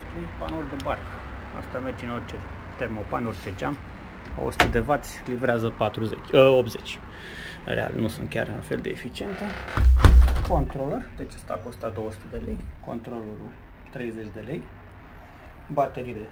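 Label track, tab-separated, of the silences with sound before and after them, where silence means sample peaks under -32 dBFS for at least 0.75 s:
14.610000	15.700000	silence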